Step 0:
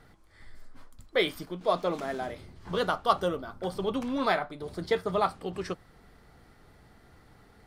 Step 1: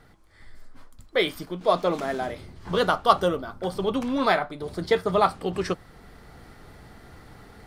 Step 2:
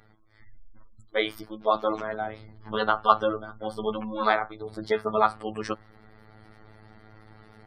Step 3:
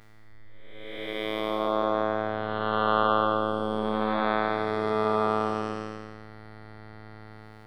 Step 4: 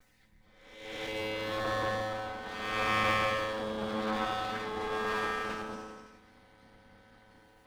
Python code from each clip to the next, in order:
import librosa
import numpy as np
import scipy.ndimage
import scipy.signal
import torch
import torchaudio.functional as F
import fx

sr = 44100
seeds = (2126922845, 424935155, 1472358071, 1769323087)

y1 = fx.rider(x, sr, range_db=10, speed_s=2.0)
y1 = F.gain(torch.from_numpy(y1), 4.0).numpy()
y2 = fx.spec_gate(y1, sr, threshold_db=-30, keep='strong')
y2 = fx.dynamic_eq(y2, sr, hz=1200.0, q=1.2, threshold_db=-36.0, ratio=4.0, max_db=5)
y2 = fx.robotise(y2, sr, hz=108.0)
y2 = F.gain(torch.from_numpy(y2), -2.0).numpy()
y3 = fx.spec_blur(y2, sr, span_ms=585.0)
y3 = F.gain(torch.from_numpy(y3), 7.0).numpy()
y4 = fx.lower_of_two(y3, sr, delay_ms=3.9)